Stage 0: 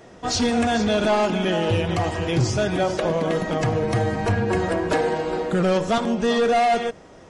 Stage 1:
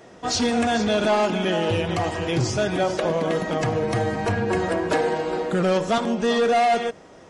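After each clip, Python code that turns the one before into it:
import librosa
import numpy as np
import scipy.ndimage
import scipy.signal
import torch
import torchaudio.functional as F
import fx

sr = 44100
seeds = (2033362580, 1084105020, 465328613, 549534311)

y = fx.low_shelf(x, sr, hz=92.0, db=-9.0)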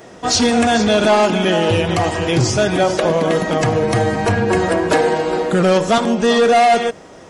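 y = fx.high_shelf(x, sr, hz=9000.0, db=7.0)
y = y * librosa.db_to_amplitude(7.0)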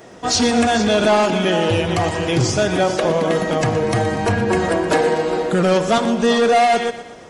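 y = fx.echo_feedback(x, sr, ms=120, feedback_pct=50, wet_db=-13.5)
y = y * librosa.db_to_amplitude(-2.0)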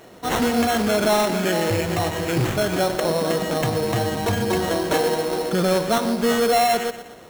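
y = fx.sample_hold(x, sr, seeds[0], rate_hz=4800.0, jitter_pct=0)
y = y * librosa.db_to_amplitude(-4.0)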